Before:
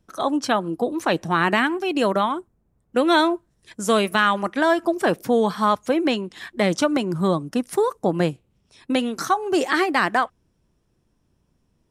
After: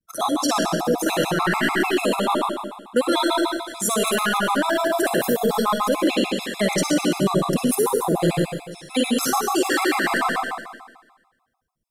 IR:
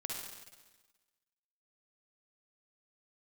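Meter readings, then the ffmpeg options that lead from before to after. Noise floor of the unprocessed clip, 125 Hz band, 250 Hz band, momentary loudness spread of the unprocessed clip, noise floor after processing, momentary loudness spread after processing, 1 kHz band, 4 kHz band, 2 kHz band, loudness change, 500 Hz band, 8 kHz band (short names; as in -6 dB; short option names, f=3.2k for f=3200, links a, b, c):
-68 dBFS, +1.5 dB, +0.5 dB, 6 LU, -70 dBFS, 5 LU, -0.5 dB, +3.0 dB, 0.0 dB, 0.0 dB, 0.0 dB, +9.5 dB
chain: -filter_complex "[0:a]aemphasis=mode=production:type=50fm,acontrast=85,agate=range=-33dB:threshold=-45dB:ratio=3:detection=peak[a];[1:a]atrim=start_sample=2205[b];[a][b]afir=irnorm=-1:irlink=0,alimiter=limit=-9.5dB:level=0:latency=1:release=15,afftfilt=real='re*gt(sin(2*PI*6.8*pts/sr)*(1-2*mod(floor(b*sr/1024/680),2)),0)':imag='im*gt(sin(2*PI*6.8*pts/sr)*(1-2*mod(floor(b*sr/1024/680),2)),0)':win_size=1024:overlap=0.75"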